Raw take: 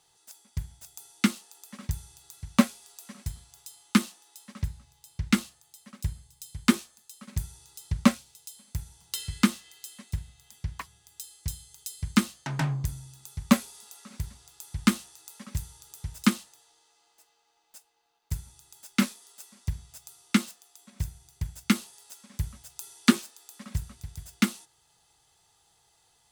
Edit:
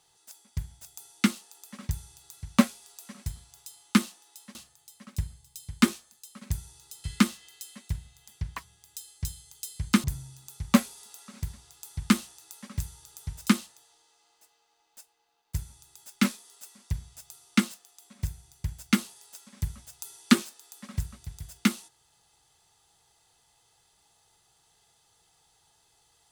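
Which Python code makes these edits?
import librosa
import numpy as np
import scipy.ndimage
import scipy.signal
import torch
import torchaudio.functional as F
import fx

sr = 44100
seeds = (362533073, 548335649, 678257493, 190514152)

y = fx.edit(x, sr, fx.cut(start_s=4.55, length_s=0.86),
    fx.cut(start_s=7.9, length_s=1.37),
    fx.cut(start_s=12.27, length_s=0.54), tone=tone)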